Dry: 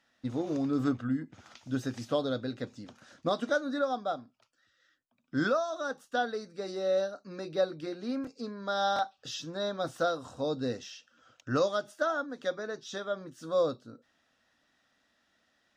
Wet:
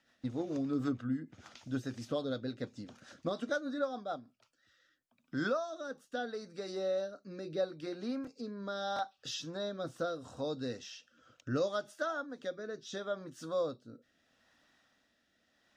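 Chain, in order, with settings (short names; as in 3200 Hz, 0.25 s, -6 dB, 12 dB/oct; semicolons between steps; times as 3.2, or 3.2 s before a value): in parallel at +3 dB: compressor, threshold -44 dBFS, peak gain reduction 19.5 dB; on the sum: rotary speaker horn 6.7 Hz, later 0.75 Hz, at 4.17; gain -5 dB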